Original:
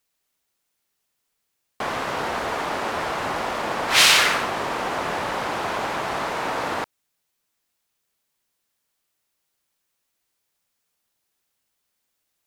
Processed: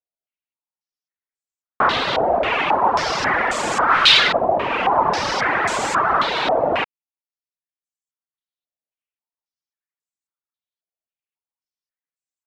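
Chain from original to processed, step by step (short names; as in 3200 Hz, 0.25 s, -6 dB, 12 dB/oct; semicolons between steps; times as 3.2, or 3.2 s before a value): reverb removal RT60 1.5 s; sample leveller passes 5; stepped low-pass 3.7 Hz 660–7600 Hz; gain -10.5 dB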